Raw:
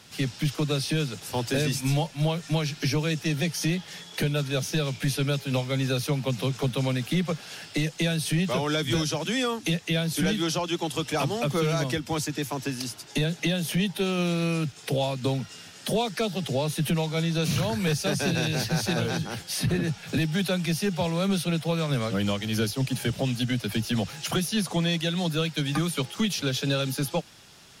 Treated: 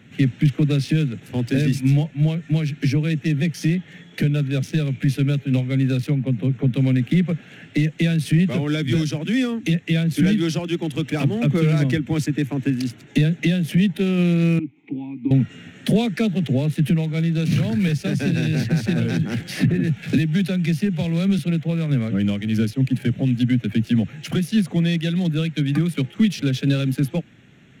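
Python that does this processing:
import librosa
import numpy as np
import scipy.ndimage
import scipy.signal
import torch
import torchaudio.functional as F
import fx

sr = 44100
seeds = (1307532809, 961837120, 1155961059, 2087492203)

y = fx.high_shelf(x, sr, hz=2300.0, db=-7.0, at=(6.15, 6.74))
y = fx.vowel_filter(y, sr, vowel='u', at=(14.59, 15.31))
y = fx.band_squash(y, sr, depth_pct=100, at=(17.52, 21.39))
y = fx.wiener(y, sr, points=9)
y = fx.graphic_eq(y, sr, hz=(125, 250, 1000, 2000), db=(8, 11, -10, 8))
y = fx.rider(y, sr, range_db=10, speed_s=2.0)
y = y * librosa.db_to_amplitude(-2.0)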